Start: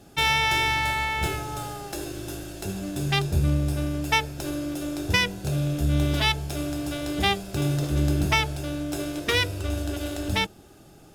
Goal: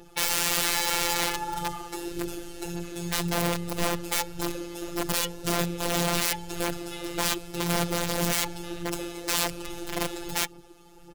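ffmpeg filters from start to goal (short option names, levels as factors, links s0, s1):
-af "highshelf=f=4700:g=-2.5,aecho=1:1:2.3:0.76,aphaser=in_gain=1:out_gain=1:delay=4.9:decay=0.57:speed=1.8:type=sinusoidal,aeval=exprs='(mod(6.68*val(0)+1,2)-1)/6.68':c=same,afftfilt=real='hypot(re,im)*cos(PI*b)':imag='0':win_size=1024:overlap=0.75,volume=0.891"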